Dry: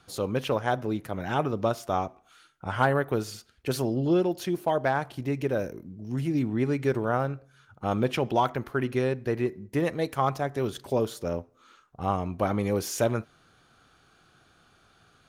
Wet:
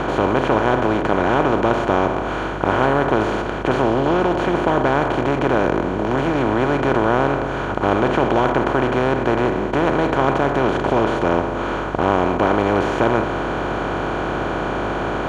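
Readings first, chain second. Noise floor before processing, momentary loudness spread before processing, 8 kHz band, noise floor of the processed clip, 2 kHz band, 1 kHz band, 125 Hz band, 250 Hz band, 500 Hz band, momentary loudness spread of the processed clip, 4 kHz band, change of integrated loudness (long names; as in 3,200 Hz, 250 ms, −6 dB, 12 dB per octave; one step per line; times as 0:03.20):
−62 dBFS, 9 LU, can't be measured, −24 dBFS, +13.0 dB, +12.0 dB, +6.5 dB, +10.0 dB, +10.0 dB, 6 LU, +9.0 dB, +9.5 dB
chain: compressor on every frequency bin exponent 0.2
parametric band 5,100 Hz −9.5 dB 0.46 octaves
mains hum 50 Hz, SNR 15 dB
high-frequency loss of the air 150 metres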